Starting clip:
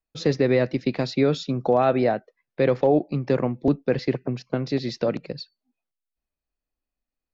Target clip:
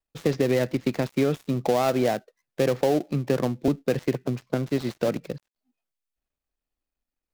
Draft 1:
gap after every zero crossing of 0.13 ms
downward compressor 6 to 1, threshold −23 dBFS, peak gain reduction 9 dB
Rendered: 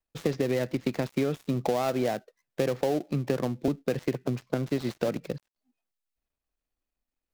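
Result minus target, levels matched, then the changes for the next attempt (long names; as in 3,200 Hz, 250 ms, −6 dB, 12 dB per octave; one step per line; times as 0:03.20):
downward compressor: peak gain reduction +5 dB
change: downward compressor 6 to 1, threshold −17 dBFS, peak gain reduction 4 dB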